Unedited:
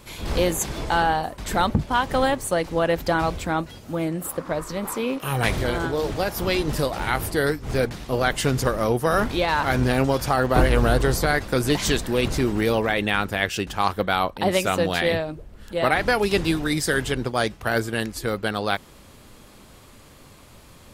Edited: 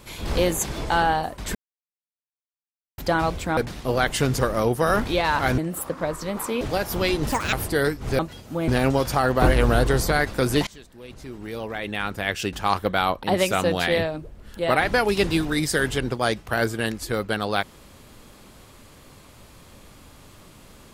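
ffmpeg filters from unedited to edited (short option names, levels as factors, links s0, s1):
-filter_complex "[0:a]asplit=11[s0][s1][s2][s3][s4][s5][s6][s7][s8][s9][s10];[s0]atrim=end=1.55,asetpts=PTS-STARTPTS,afade=t=out:st=1.546:d=0.004:c=hsin[s11];[s1]atrim=start=1.55:end=2.98,asetpts=PTS-STARTPTS,volume=0[s12];[s2]atrim=start=2.98:end=3.572,asetpts=PTS-STARTPTS,afade=t=in:d=0.004:c=hsin[s13];[s3]atrim=start=7.808:end=9.822[s14];[s4]atrim=start=4.058:end=5.092[s15];[s5]atrim=start=6.068:end=6.784[s16];[s6]atrim=start=6.78:end=7.15,asetpts=PTS-STARTPTS,asetrate=78057,aresample=44100[s17];[s7]atrim=start=7.146:end=7.812[s18];[s8]atrim=start=3.568:end=4.062[s19];[s9]atrim=start=9.818:end=11.81,asetpts=PTS-STARTPTS,afade=t=out:st=1.988:d=0.004:c=hsin:silence=0.0630957[s20];[s10]atrim=start=11.81,asetpts=PTS-STARTPTS,afade=t=in:d=1.86:c=qua:silence=0.0630957[s21];[s11][s12][s13]concat=n=3:v=0:a=1[s22];[s22][s14]acrossfade=d=0.004:c1=hsin:c2=hsin[s23];[s23][s15]acrossfade=d=0.004:c1=hsin:c2=hsin[s24];[s24][s16]acrossfade=d=0.004:c1=hsin:c2=hsin[s25];[s25][s17]acrossfade=d=0.004:c1=hsin:c2=hsin[s26];[s26][s18]acrossfade=d=0.004:c1=hsin:c2=hsin[s27];[s27][s19]acrossfade=d=0.004:c1=hsin:c2=hsin[s28];[s20][s21]concat=n=2:v=0:a=1[s29];[s28][s29]acrossfade=d=0.004:c1=hsin:c2=hsin"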